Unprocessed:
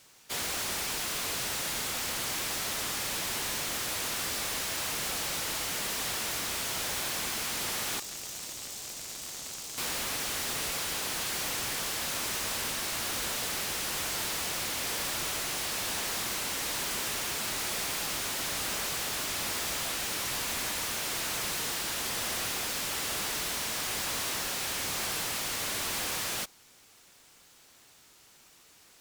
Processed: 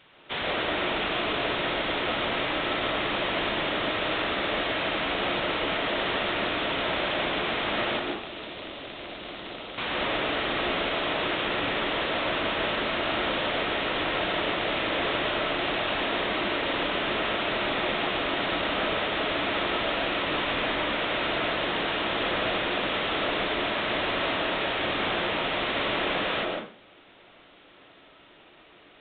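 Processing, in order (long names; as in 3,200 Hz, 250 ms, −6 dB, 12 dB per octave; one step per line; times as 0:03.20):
low-shelf EQ 180 Hz −3.5 dB
downsampling to 8,000 Hz
on a send: parametric band 330 Hz +14 dB 2.6 octaves + convolution reverb RT60 0.45 s, pre-delay 92 ms, DRR −1 dB
on the sum: level +6.5 dB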